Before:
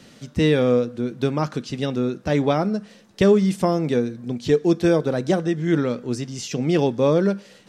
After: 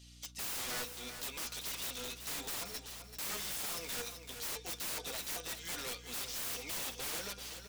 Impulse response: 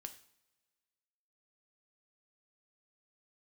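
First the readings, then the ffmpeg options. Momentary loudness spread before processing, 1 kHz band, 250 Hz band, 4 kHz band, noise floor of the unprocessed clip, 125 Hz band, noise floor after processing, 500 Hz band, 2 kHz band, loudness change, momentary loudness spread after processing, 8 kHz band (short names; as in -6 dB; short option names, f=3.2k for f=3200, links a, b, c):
9 LU, -17.5 dB, -33.0 dB, -5.0 dB, -50 dBFS, -30.5 dB, -54 dBFS, -29.5 dB, -11.0 dB, -17.5 dB, 5 LU, +1.5 dB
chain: -af "aeval=exprs='if(lt(val(0),0),0.708*val(0),val(0))':c=same,highpass=820,agate=range=-10dB:threshold=-51dB:ratio=16:detection=peak,highshelf=f=5.2k:g=-2.5,aecho=1:1:4.2:0.59,flanger=delay=9.9:depth=2.6:regen=-16:speed=1.2:shape=sinusoidal,aexciter=amount=6.5:drive=4.5:freq=2.4k,aeval=exprs='val(0)+0.00398*(sin(2*PI*60*n/s)+sin(2*PI*2*60*n/s)/2+sin(2*PI*3*60*n/s)/3+sin(2*PI*4*60*n/s)/4+sin(2*PI*5*60*n/s)/5)':c=same,aeval=exprs='(mod(20*val(0)+1,2)-1)/20':c=same,aecho=1:1:385|770|1155:0.355|0.0781|0.0172,volume=-8.5dB"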